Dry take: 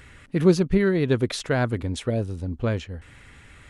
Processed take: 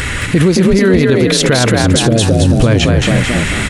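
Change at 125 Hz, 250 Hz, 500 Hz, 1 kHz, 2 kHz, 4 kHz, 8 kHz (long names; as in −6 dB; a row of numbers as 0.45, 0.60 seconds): +14.5, +13.0, +11.5, +14.5, +16.5, +20.5, +22.0 decibels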